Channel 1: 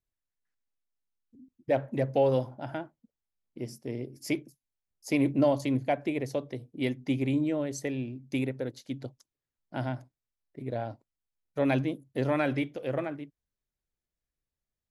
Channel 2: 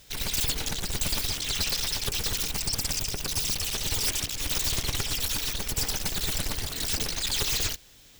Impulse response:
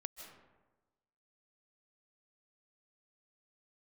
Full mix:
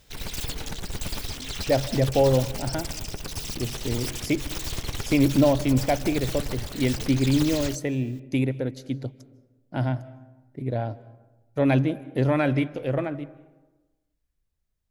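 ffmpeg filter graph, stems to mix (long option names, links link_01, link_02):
-filter_complex "[0:a]lowshelf=frequency=130:gain=11.5,volume=1.5dB,asplit=2[link_01][link_02];[link_02]volume=-7.5dB[link_03];[1:a]highshelf=frequency=2200:gain=-8,volume=0dB[link_04];[2:a]atrim=start_sample=2205[link_05];[link_03][link_05]afir=irnorm=-1:irlink=0[link_06];[link_01][link_04][link_06]amix=inputs=3:normalize=0"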